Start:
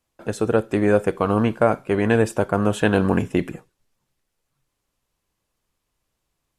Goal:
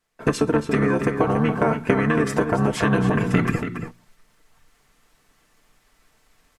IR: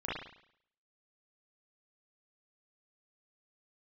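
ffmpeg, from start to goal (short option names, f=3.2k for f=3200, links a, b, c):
-filter_complex "[0:a]bandreject=f=60:t=h:w=6,bandreject=f=120:t=h:w=6,bandreject=f=180:t=h:w=6,bandreject=f=240:t=h:w=6,bandreject=f=300:t=h:w=6,bandreject=f=360:t=h:w=6,agate=range=-10dB:threshold=-38dB:ratio=16:detection=peak,equalizer=f=1.9k:t=o:w=0.75:g=8,aecho=1:1:4.5:0.73,dynaudnorm=f=140:g=3:m=14dB,alimiter=limit=-9dB:level=0:latency=1:release=318,acompressor=threshold=-24dB:ratio=16,asplit=2[a][b];[b]adelay=279.9,volume=-7dB,highshelf=f=4k:g=-6.3[c];[a][c]amix=inputs=2:normalize=0,asplit=2[d][e];[e]asetrate=29433,aresample=44100,atempo=1.49831,volume=-1dB[f];[d][f]amix=inputs=2:normalize=0,volume=5.5dB"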